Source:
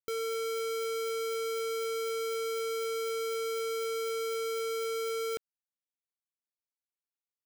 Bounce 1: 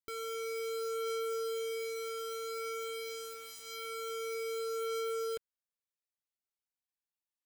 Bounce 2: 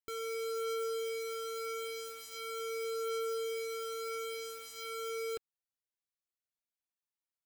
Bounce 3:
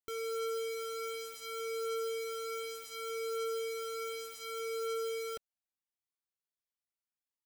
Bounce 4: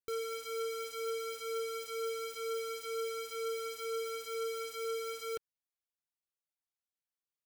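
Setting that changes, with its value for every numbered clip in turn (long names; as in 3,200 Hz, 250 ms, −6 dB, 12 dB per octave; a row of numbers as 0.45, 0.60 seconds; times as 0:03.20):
flanger whose copies keep moving one way, speed: 0.26, 0.41, 0.67, 2.1 Hertz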